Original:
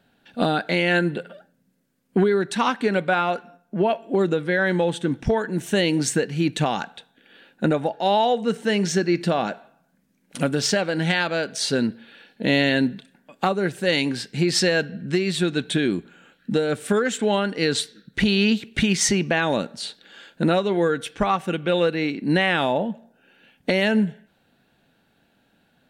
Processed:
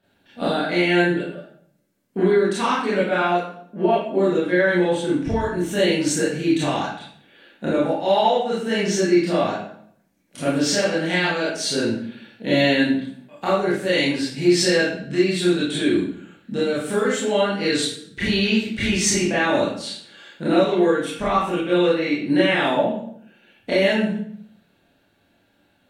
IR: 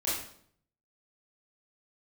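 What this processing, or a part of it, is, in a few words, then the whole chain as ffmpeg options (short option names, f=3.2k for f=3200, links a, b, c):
bathroom: -filter_complex "[1:a]atrim=start_sample=2205[a];[0:a][a]afir=irnorm=-1:irlink=0,volume=-5.5dB"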